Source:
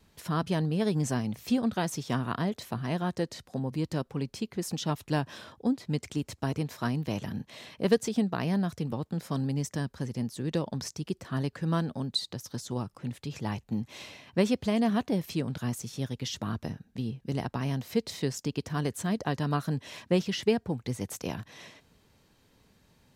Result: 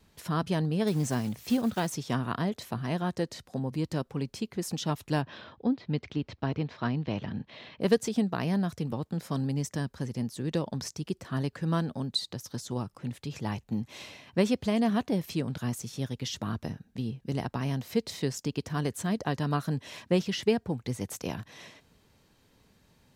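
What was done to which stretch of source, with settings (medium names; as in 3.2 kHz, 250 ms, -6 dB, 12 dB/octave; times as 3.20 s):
0.87–1.96 s: block-companded coder 5-bit
5.22–7.81 s: low-pass 4.2 kHz 24 dB/octave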